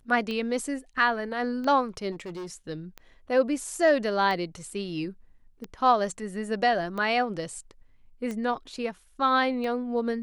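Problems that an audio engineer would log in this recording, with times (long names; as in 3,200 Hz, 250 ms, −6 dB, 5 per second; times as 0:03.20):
scratch tick 45 rpm −22 dBFS
0:02.11–0:02.54: clipping −33.5 dBFS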